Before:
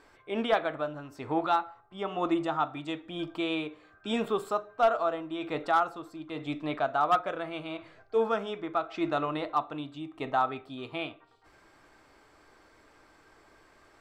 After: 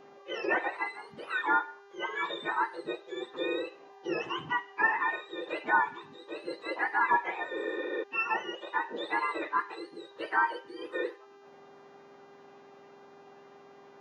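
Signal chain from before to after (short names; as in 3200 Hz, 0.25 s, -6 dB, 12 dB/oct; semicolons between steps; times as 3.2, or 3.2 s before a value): spectrum mirrored in octaves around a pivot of 1100 Hz; spectral repair 7.6–8, 210–6700 Hz before; in parallel at -2 dB: limiter -26 dBFS, peak gain reduction 11 dB; on the sum: three-band isolator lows -19 dB, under 210 Hz, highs -24 dB, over 2500 Hz; buzz 400 Hz, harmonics 17, -56 dBFS -8 dB/oct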